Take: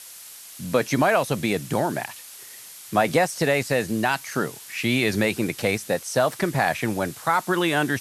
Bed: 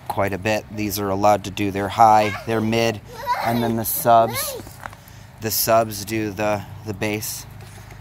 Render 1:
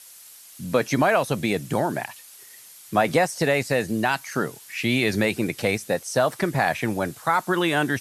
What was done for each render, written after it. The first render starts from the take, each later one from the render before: denoiser 6 dB, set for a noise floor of -43 dBFS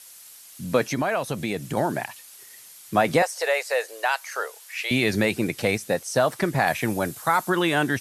0.91–1.77 compressor 1.5:1, threshold -29 dBFS; 3.22–4.91 elliptic high-pass 480 Hz, stop band 60 dB; 6.67–7.5 high shelf 8700 Hz +9 dB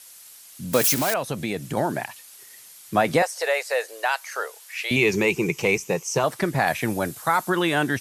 0.73–1.14 switching spikes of -13.5 dBFS; 4.96–6.24 ripple EQ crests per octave 0.75, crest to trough 12 dB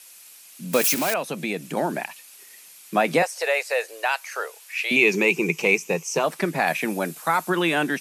elliptic high-pass 160 Hz; bell 2500 Hz +7 dB 0.29 oct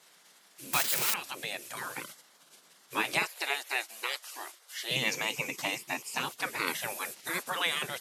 low shelf 110 Hz +9 dB; spectral gate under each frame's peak -15 dB weak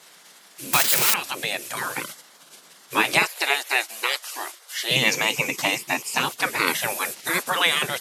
gain +10 dB; limiter -3 dBFS, peak gain reduction 2.5 dB

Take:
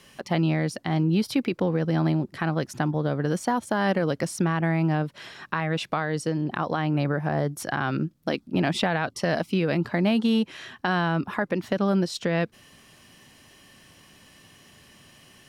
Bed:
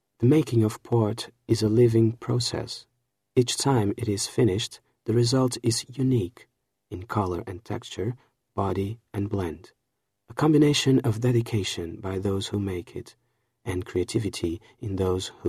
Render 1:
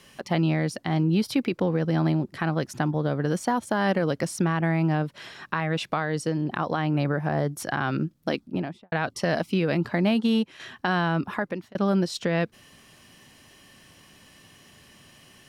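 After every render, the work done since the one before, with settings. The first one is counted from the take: 8.33–8.92 studio fade out; 10.14–10.6 upward expander, over -33 dBFS; 11.2–11.75 fade out equal-power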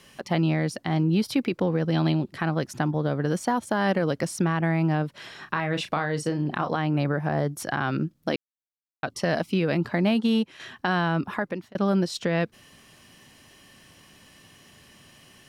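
1.92–2.32 band shelf 3300 Hz +8.5 dB 1 oct; 5.28–6.76 doubler 34 ms -9 dB; 8.36–9.03 mute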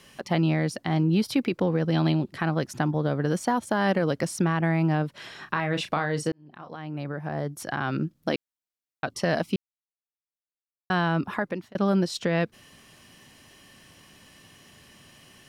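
6.32–8.21 fade in; 9.56–10.9 mute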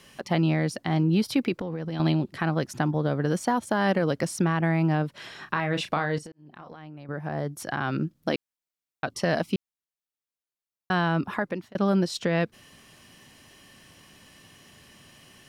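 1.53–2 compressor 12:1, threshold -27 dBFS; 6.18–7.09 compressor 16:1, threshold -38 dBFS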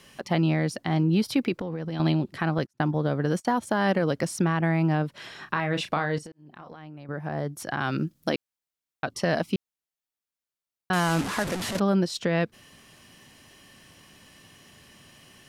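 2.58–3.45 gate -34 dBFS, range -35 dB; 7.79–8.3 high shelf 3700 Hz +9 dB; 10.93–11.8 delta modulation 64 kbps, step -25 dBFS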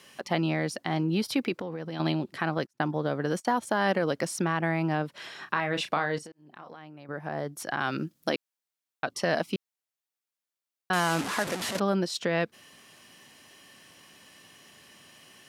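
HPF 310 Hz 6 dB/oct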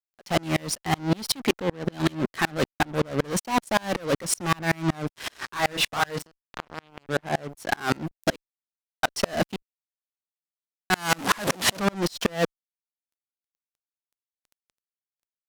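fuzz box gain 34 dB, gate -43 dBFS; dB-ramp tremolo swelling 5.3 Hz, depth 34 dB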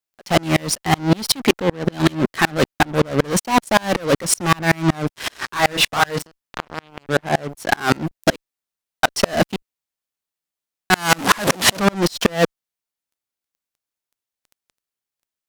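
gain +7.5 dB

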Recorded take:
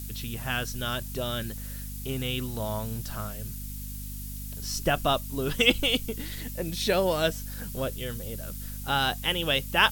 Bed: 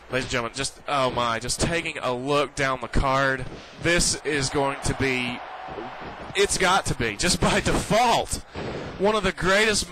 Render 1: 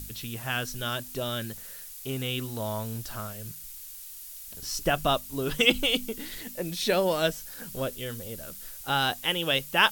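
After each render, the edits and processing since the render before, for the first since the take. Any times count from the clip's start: de-hum 50 Hz, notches 5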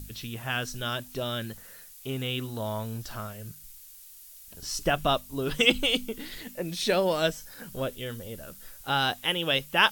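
noise print and reduce 6 dB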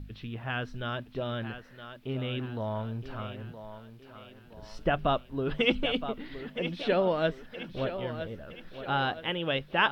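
air absorption 390 m; thinning echo 0.967 s, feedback 48%, high-pass 190 Hz, level -10 dB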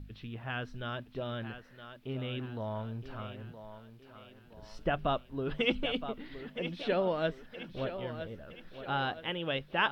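gain -4 dB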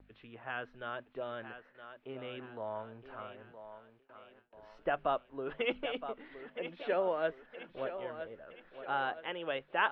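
gate with hold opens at -45 dBFS; three-band isolator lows -17 dB, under 340 Hz, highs -24 dB, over 2700 Hz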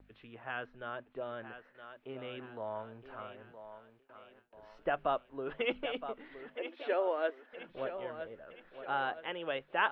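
0.66–1.53 high shelf 3000 Hz -7 dB; 6.55–7.53 brick-wall FIR high-pass 230 Hz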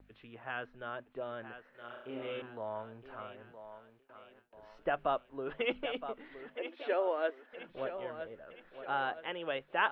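1.69–2.42 flutter echo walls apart 5.8 m, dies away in 0.73 s

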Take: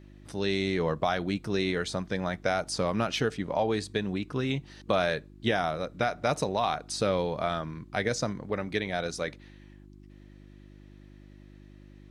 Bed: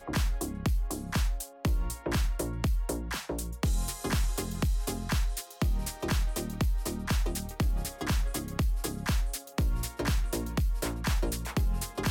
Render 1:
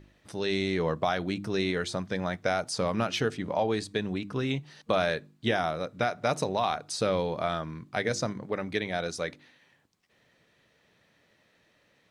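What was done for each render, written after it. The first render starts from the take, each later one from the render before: de-hum 50 Hz, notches 7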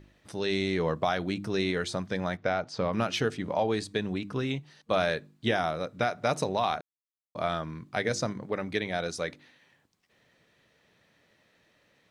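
2.37–2.93 air absorption 170 m; 4.35–4.91 fade out, to -7.5 dB; 6.81–7.35 mute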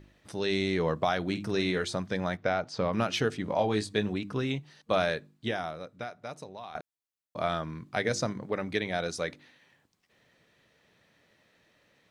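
1.22–1.85 doubler 49 ms -11.5 dB; 3.48–4.13 doubler 19 ms -6.5 dB; 4.96–6.75 fade out quadratic, to -16 dB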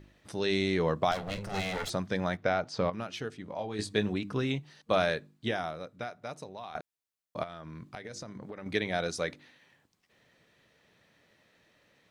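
1.11–1.9 minimum comb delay 1.5 ms; 2.9–3.79 gain -9.5 dB; 7.43–8.66 compressor 12:1, threshold -38 dBFS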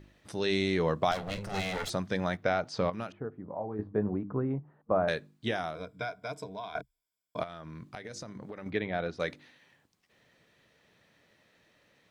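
3.12–5.08 LPF 1200 Hz 24 dB/oct; 5.75–7.4 ripple EQ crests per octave 1.7, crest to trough 14 dB; 8.7–9.2 air absorption 340 m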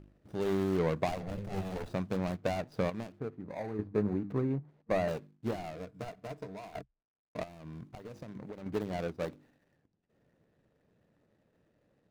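median filter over 41 samples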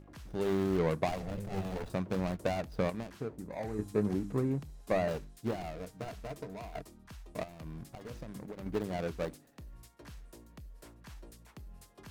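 add bed -21.5 dB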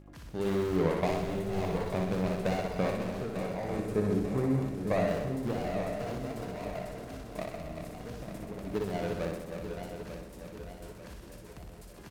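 regenerating reverse delay 0.447 s, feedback 69%, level -7 dB; reverse bouncing-ball echo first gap 60 ms, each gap 1.1×, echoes 5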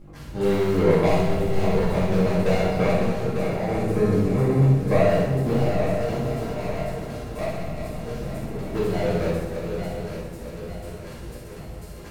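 shoebox room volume 100 m³, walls mixed, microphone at 2.1 m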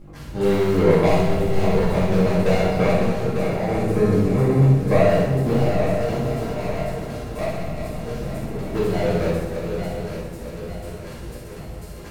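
gain +2.5 dB

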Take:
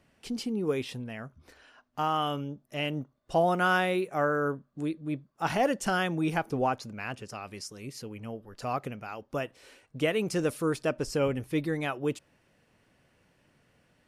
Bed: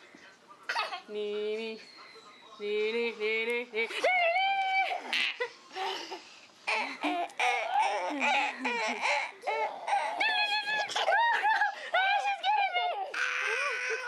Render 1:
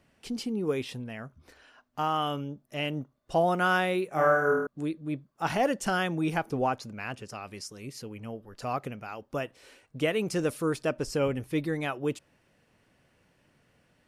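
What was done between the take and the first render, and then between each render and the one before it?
4.09–4.67 flutter echo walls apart 4.4 m, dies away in 0.85 s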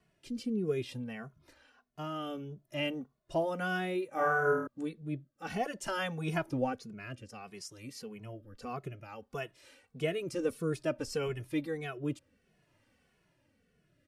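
rotary speaker horn 0.6 Hz; endless flanger 2.3 ms -1.6 Hz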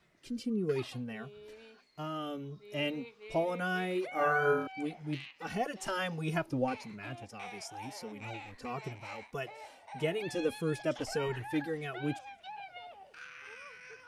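add bed -18 dB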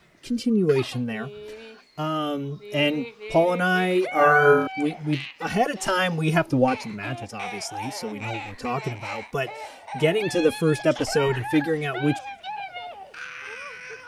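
gain +12 dB

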